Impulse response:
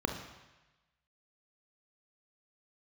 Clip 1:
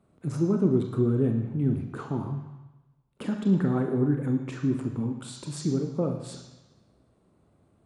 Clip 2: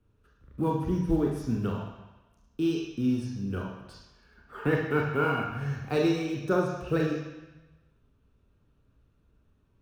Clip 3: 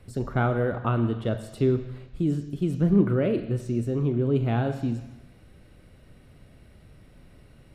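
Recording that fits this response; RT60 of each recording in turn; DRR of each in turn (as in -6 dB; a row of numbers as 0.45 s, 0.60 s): 1; 1.1 s, 1.1 s, 1.1 s; 3.5 dB, -0.5 dB, 8.0 dB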